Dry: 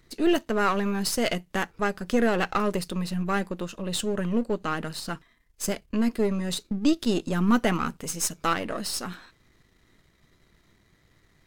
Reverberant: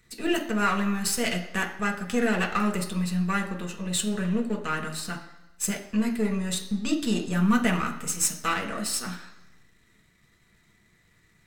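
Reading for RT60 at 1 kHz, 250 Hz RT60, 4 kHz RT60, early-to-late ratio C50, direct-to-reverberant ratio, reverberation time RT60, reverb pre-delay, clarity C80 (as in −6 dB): 1.0 s, 0.85 s, 0.95 s, 10.0 dB, 1.0 dB, 1.0 s, 3 ms, 12.5 dB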